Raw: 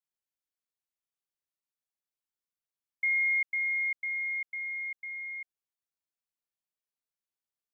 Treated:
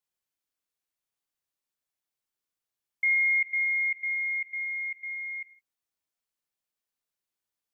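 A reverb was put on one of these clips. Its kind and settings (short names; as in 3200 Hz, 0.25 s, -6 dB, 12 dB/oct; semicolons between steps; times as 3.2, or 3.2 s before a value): non-linear reverb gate 0.19 s falling, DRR 9 dB; gain +3.5 dB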